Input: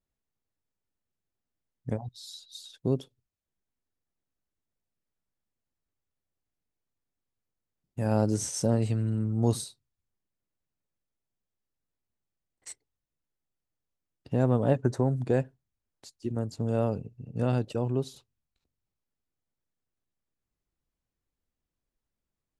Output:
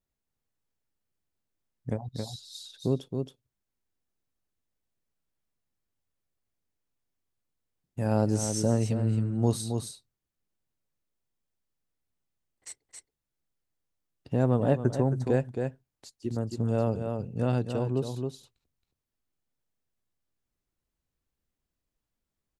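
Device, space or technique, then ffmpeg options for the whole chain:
ducked delay: -filter_complex "[0:a]asplit=3[link_01][link_02][link_03];[link_02]adelay=271,volume=-4dB[link_04];[link_03]apad=whole_len=1008415[link_05];[link_04][link_05]sidechaincompress=threshold=-28dB:ratio=4:attack=16:release=390[link_06];[link_01][link_06]amix=inputs=2:normalize=0"

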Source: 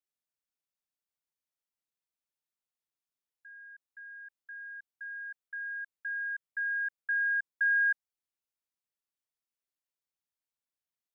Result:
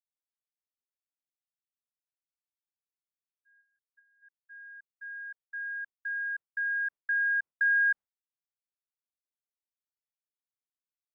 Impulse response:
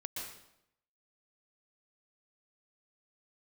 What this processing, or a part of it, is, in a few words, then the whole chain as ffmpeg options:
hearing-loss simulation: -filter_complex "[0:a]asplit=3[link_01][link_02][link_03];[link_01]afade=type=out:start_time=3.6:duration=0.02[link_04];[link_02]asplit=2[link_05][link_06];[link_06]adelay=23,volume=-7.5dB[link_07];[link_05][link_07]amix=inputs=2:normalize=0,afade=type=in:start_time=3.6:duration=0.02,afade=type=out:start_time=4.21:duration=0.02[link_08];[link_03]afade=type=in:start_time=4.21:duration=0.02[link_09];[link_04][link_08][link_09]amix=inputs=3:normalize=0,lowpass=1500,agate=range=-33dB:threshold=-43dB:ratio=3:detection=peak,volume=5.5dB"

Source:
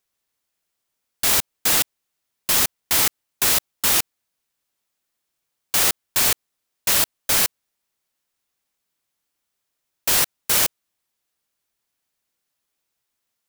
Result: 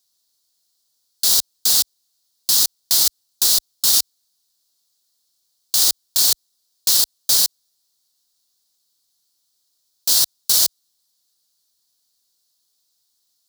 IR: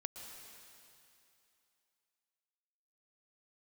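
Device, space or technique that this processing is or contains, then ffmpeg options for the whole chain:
over-bright horn tweeter: -af "highshelf=frequency=3200:width_type=q:width=3:gain=10.5,alimiter=limit=-3.5dB:level=0:latency=1:release=58,highpass=41,volume=-1.5dB"

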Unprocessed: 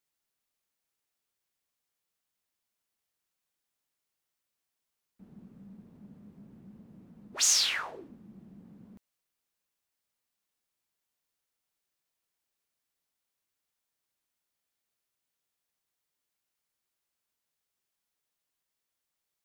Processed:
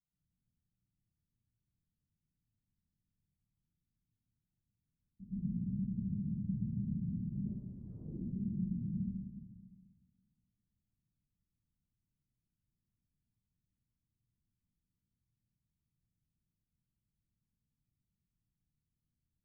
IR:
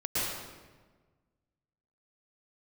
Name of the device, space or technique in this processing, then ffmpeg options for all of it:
club heard from the street: -filter_complex "[0:a]alimiter=limit=-22.5dB:level=0:latency=1:release=464,lowpass=frequency=190:width=0.5412,lowpass=frequency=190:width=1.3066[link_01];[1:a]atrim=start_sample=2205[link_02];[link_01][link_02]afir=irnorm=-1:irlink=0,volume=8.5dB"

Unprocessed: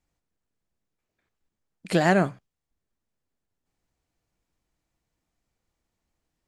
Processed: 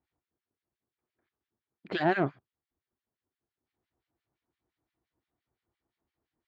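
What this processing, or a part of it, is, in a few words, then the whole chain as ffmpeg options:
guitar amplifier with harmonic tremolo: -filter_complex "[0:a]acrossover=split=1400[link_01][link_02];[link_01]aeval=exprs='val(0)*(1-1/2+1/2*cos(2*PI*5.8*n/s))':channel_layout=same[link_03];[link_02]aeval=exprs='val(0)*(1-1/2-1/2*cos(2*PI*5.8*n/s))':channel_layout=same[link_04];[link_03][link_04]amix=inputs=2:normalize=0,asoftclip=type=tanh:threshold=-18dB,highpass=88,equalizer=frequency=180:width_type=q:width=4:gain=-9,equalizer=frequency=360:width_type=q:width=4:gain=5,equalizer=frequency=550:width_type=q:width=4:gain=-4,equalizer=frequency=2600:width_type=q:width=4:gain=-4,lowpass=frequency=3800:width=0.5412,lowpass=frequency=3800:width=1.3066,volume=2dB"

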